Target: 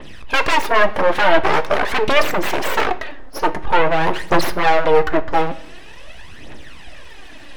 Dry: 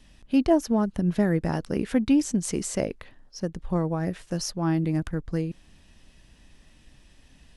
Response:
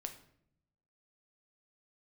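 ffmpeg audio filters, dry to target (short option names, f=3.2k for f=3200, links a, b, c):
-filter_complex "[0:a]aeval=exprs='0.335*sin(PI/2*6.31*val(0)/0.335)':c=same,aphaser=in_gain=1:out_gain=1:delay=4:decay=0.66:speed=0.46:type=triangular,aeval=exprs='abs(val(0))':c=same,bass=f=250:g=-15,treble=f=4k:g=-12,asplit=2[a][b];[1:a]atrim=start_sample=2205[c];[b][c]afir=irnorm=-1:irlink=0,volume=3.5dB[d];[a][d]amix=inputs=2:normalize=0,adynamicequalizer=threshold=0.0224:dfrequency=5800:dqfactor=0.7:tfrequency=5800:tqfactor=0.7:attack=5:release=100:ratio=0.375:range=2:mode=cutabove:tftype=highshelf,volume=-5.5dB"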